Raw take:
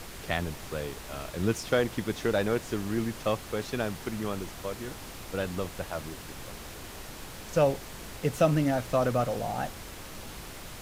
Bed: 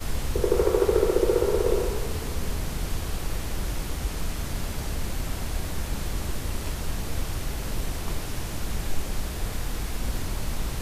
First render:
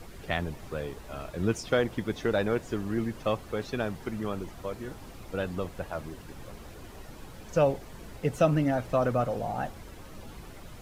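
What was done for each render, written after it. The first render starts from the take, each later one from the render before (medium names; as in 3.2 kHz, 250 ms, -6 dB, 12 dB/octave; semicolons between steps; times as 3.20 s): noise reduction 10 dB, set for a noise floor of -43 dBFS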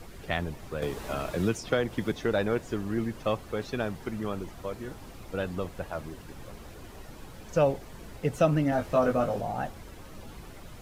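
0.82–2.12 s: three bands compressed up and down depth 70%; 8.70–9.41 s: doubling 20 ms -3 dB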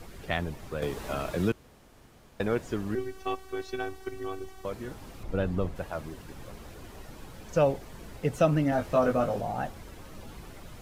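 1.52–2.40 s: room tone; 2.95–4.65 s: robot voice 380 Hz; 5.23–5.76 s: tilt EQ -2 dB/octave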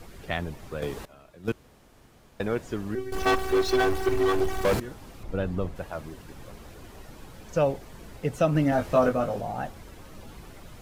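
1.05–1.48 s: gate -24 dBFS, range -20 dB; 3.12–4.80 s: waveshaping leveller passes 5; 8.55–9.09 s: gain +3 dB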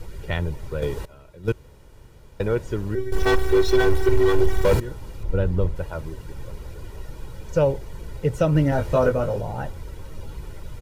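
bass shelf 270 Hz +9.5 dB; comb 2.1 ms, depth 53%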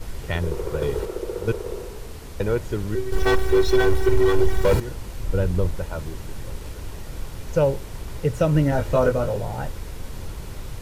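add bed -8 dB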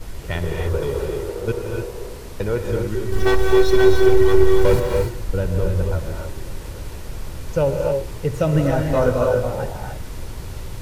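gated-style reverb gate 320 ms rising, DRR 1.5 dB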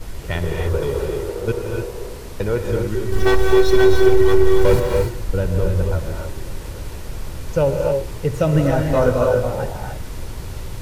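trim +1.5 dB; peak limiter -3 dBFS, peak gain reduction 2.5 dB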